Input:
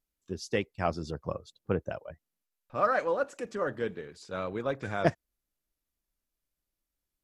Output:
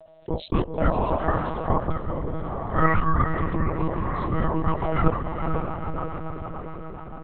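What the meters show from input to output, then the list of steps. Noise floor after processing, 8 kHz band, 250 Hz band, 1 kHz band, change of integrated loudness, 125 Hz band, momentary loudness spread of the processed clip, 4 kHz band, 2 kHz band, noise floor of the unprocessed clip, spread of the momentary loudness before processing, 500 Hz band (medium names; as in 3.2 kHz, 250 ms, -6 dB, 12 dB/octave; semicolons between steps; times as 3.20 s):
-41 dBFS, no reading, +10.5 dB, +9.0 dB, +6.5 dB, +13.5 dB, 11 LU, +1.0 dB, +4.5 dB, under -85 dBFS, 13 LU, +3.5 dB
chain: peaking EQ 2.7 kHz -11.5 dB 2.9 oct; band-stop 1.6 kHz, Q 5.4; ring modulator 640 Hz; bass shelf 97 Hz +9.5 dB; echo that smears into a reverb 474 ms, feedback 42%, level -10.5 dB; rotary cabinet horn 0.6 Hz, later 7 Hz, at 3.92 s; monotone LPC vocoder at 8 kHz 160 Hz; level flattener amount 50%; trim +8.5 dB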